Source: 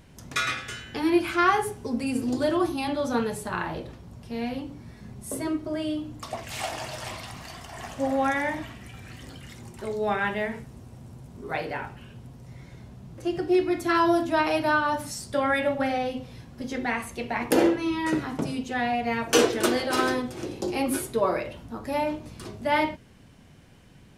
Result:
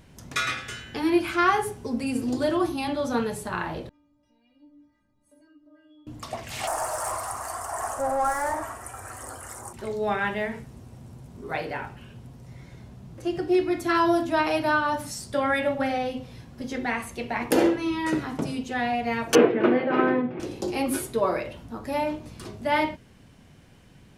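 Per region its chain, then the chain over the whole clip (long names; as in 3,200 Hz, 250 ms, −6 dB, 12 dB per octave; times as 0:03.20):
0:03.89–0:06.07: low-pass filter 2,100 Hz 6 dB per octave + downward compressor 2.5 to 1, threshold −41 dBFS + stiff-string resonator 290 Hz, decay 0.46 s, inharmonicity 0.008
0:06.67–0:09.73: mid-hump overdrive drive 23 dB, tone 1,800 Hz, clips at −15 dBFS + drawn EQ curve 100 Hz 0 dB, 160 Hz −22 dB, 260 Hz −12 dB, 660 Hz −2 dB, 1,300 Hz 0 dB, 2,300 Hz −17 dB, 3,600 Hz −20 dB, 9,000 Hz +15 dB, 14,000 Hz +9 dB
0:19.35–0:20.40: elliptic band-pass filter 150–2,400 Hz, stop band 60 dB + low-shelf EQ 430 Hz +8 dB
whole clip: no processing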